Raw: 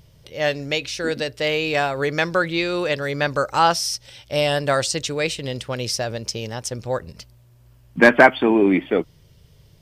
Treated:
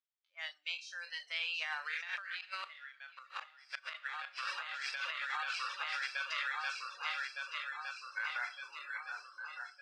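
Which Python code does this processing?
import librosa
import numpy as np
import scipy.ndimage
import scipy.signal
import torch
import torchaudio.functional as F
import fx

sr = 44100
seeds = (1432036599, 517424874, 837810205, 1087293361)

p1 = fx.spec_trails(x, sr, decay_s=0.67)
p2 = fx.doppler_pass(p1, sr, speed_mps=25, closest_m=2.6, pass_at_s=2.81)
p3 = np.clip(p2, -10.0 ** (-26.0 / 20.0), 10.0 ** (-26.0 / 20.0))
p4 = p2 + (p3 * librosa.db_to_amplitude(-10.0))
p5 = fx.mod_noise(p4, sr, seeds[0], snr_db=22)
p6 = p5 + fx.echo_swing(p5, sr, ms=1211, ratio=1.5, feedback_pct=59, wet_db=-7.5, dry=0)
p7 = fx.noise_reduce_blind(p6, sr, reduce_db=20)
p8 = fx.gate_flip(p7, sr, shuts_db=-19.0, range_db=-30)
p9 = scipy.signal.sosfilt(scipy.signal.butter(2, 3500.0, 'lowpass', fs=sr, output='sos'), p8)
p10 = fx.rev_schroeder(p9, sr, rt60_s=0.31, comb_ms=27, drr_db=14.0)
p11 = fx.dereverb_blind(p10, sr, rt60_s=0.74)
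p12 = scipy.signal.sosfilt(scipy.signal.butter(4, 1200.0, 'highpass', fs=sr, output='sos'), p11)
p13 = fx.over_compress(p12, sr, threshold_db=-46.0, ratio=-1.0)
y = p13 * librosa.db_to_amplitude(7.0)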